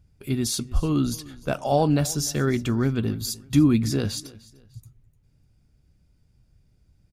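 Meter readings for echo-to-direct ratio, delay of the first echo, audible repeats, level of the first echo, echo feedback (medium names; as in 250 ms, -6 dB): -20.5 dB, 300 ms, 2, -21.0 dB, 32%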